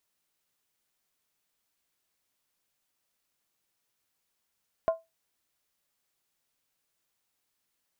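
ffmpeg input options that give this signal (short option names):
-f lavfi -i "aevalsrc='0.126*pow(10,-3*t/0.2)*sin(2*PI*656*t)+0.0355*pow(10,-3*t/0.158)*sin(2*PI*1045.7*t)+0.01*pow(10,-3*t/0.137)*sin(2*PI*1401.2*t)+0.00282*pow(10,-3*t/0.132)*sin(2*PI*1506.2*t)+0.000794*pow(10,-3*t/0.123)*sin(2*PI*1740.4*t)':d=0.63:s=44100"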